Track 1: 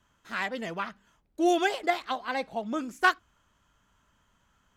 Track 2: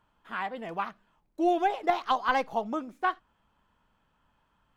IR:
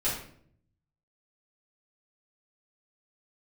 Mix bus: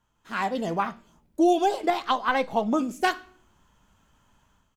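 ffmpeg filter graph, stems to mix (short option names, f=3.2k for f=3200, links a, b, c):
-filter_complex "[0:a]equalizer=f=1.2k:w=0.55:g=-11,volume=-5.5dB,asplit=2[a][b];[b]volume=-19dB[c];[1:a]flanger=delay=8.7:depth=4.2:regen=68:speed=0.48:shape=sinusoidal,adelay=0.5,volume=-1.5dB[d];[2:a]atrim=start_sample=2205[e];[c][e]afir=irnorm=-1:irlink=0[f];[a][d][f]amix=inputs=3:normalize=0,dynaudnorm=f=130:g=5:m=10dB,alimiter=limit=-12dB:level=0:latency=1:release=312"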